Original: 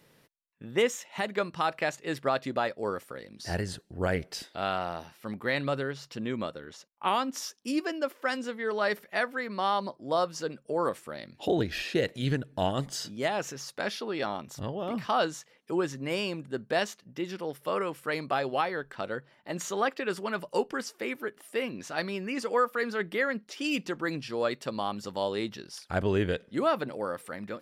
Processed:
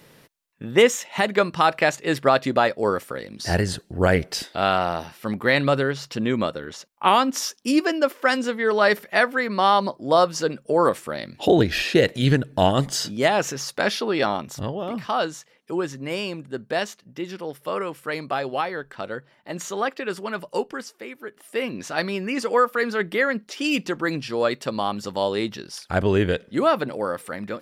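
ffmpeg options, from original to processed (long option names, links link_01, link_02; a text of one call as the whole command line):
ffmpeg -i in.wav -af "volume=22dB,afade=type=out:start_time=14.24:duration=0.71:silence=0.446684,afade=type=out:start_time=20.56:duration=0.59:silence=0.398107,afade=type=in:start_time=21.15:duration=0.61:silence=0.251189" out.wav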